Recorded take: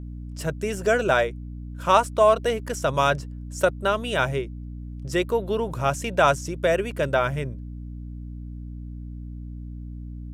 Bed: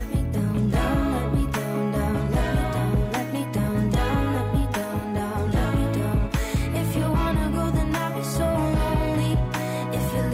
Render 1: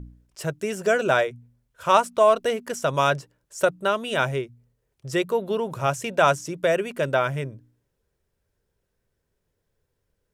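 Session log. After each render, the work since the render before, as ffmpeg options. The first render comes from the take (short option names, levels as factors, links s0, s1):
-af "bandreject=f=60:t=h:w=4,bandreject=f=120:t=h:w=4,bandreject=f=180:t=h:w=4,bandreject=f=240:t=h:w=4,bandreject=f=300:t=h:w=4"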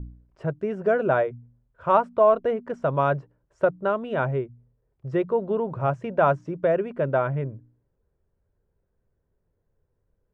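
-af "lowpass=1200,lowshelf=f=120:g=5"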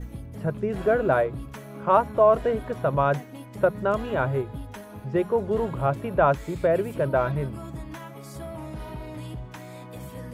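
-filter_complex "[1:a]volume=0.2[s0];[0:a][s0]amix=inputs=2:normalize=0"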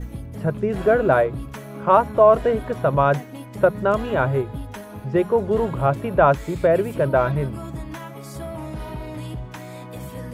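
-af "volume=1.68,alimiter=limit=0.708:level=0:latency=1"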